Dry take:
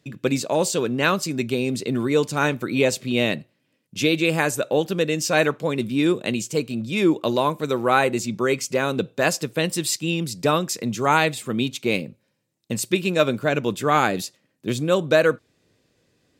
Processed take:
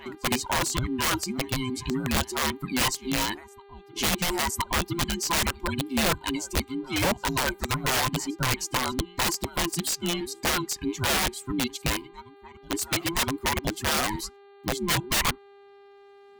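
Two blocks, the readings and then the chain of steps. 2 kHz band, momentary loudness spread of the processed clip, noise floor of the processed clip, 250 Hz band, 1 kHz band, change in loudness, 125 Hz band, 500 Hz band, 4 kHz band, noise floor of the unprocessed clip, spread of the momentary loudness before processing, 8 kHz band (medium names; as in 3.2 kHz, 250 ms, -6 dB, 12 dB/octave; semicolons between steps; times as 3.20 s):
-4.0 dB, 6 LU, -52 dBFS, -7.0 dB, -4.5 dB, -4.5 dB, -4.5 dB, -12.0 dB, +1.0 dB, -70 dBFS, 7 LU, +1.0 dB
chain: every band turned upside down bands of 500 Hz; reverb removal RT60 1.4 s; on a send: reverse echo 1016 ms -23 dB; on the sum: integer overflow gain 15.5 dB; mains buzz 400 Hz, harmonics 11, -49 dBFS -8 dB/octave; trim -3 dB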